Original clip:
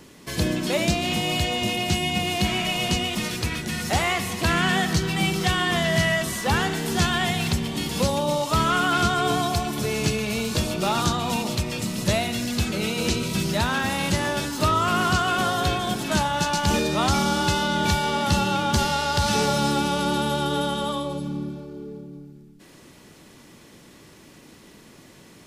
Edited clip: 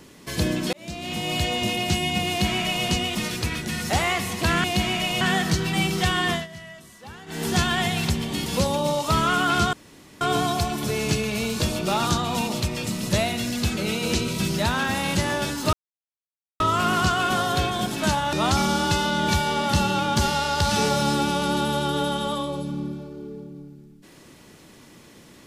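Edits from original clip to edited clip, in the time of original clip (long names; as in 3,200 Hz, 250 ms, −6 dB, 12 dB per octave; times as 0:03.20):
0:00.73–0:01.45: fade in
0:02.29–0:02.86: duplicate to 0:04.64
0:05.73–0:06.86: duck −19.5 dB, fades 0.17 s
0:09.16: splice in room tone 0.48 s
0:14.68: splice in silence 0.87 s
0:16.41–0:16.90: remove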